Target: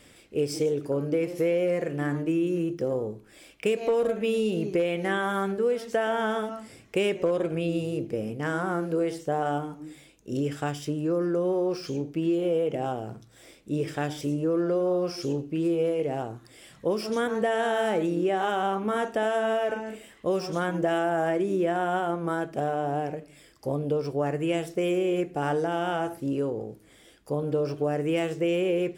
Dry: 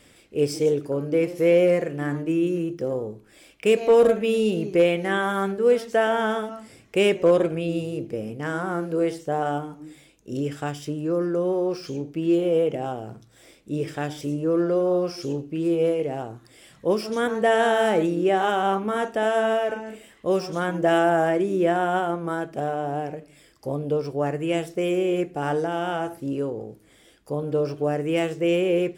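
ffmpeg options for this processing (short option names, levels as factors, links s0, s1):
-af "acompressor=threshold=0.0794:ratio=6"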